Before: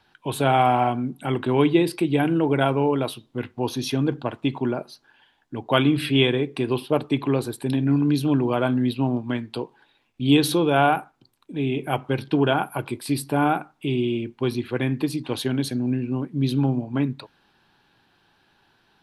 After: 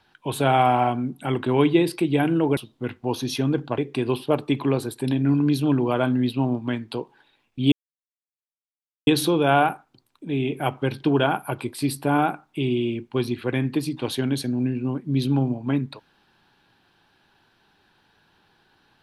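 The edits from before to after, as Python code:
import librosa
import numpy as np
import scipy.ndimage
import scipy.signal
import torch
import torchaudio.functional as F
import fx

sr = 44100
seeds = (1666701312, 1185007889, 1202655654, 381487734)

y = fx.edit(x, sr, fx.cut(start_s=2.57, length_s=0.54),
    fx.cut(start_s=4.32, length_s=2.08),
    fx.insert_silence(at_s=10.34, length_s=1.35), tone=tone)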